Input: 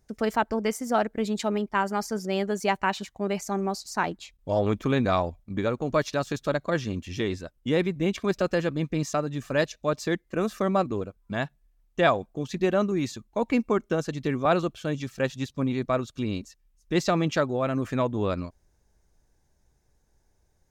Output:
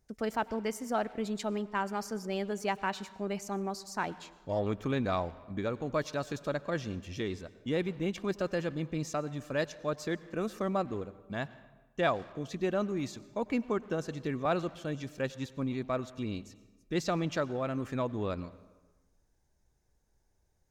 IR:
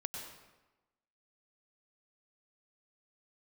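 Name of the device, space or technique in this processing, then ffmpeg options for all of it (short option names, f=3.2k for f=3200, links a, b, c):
saturated reverb return: -filter_complex "[0:a]asplit=2[a][b];[1:a]atrim=start_sample=2205[c];[b][c]afir=irnorm=-1:irlink=0,asoftclip=type=tanh:threshold=-28.5dB,volume=-10dB[d];[a][d]amix=inputs=2:normalize=0,volume=-8dB"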